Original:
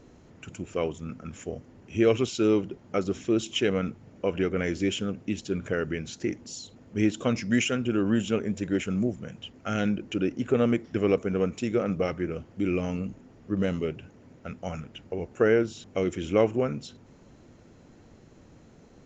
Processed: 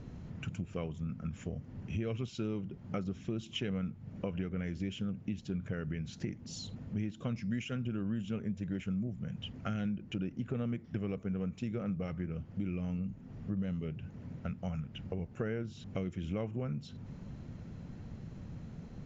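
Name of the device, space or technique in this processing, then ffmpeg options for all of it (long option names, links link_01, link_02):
jukebox: -af "lowpass=5200,lowshelf=frequency=240:width_type=q:width=1.5:gain=9,acompressor=threshold=-36dB:ratio=4"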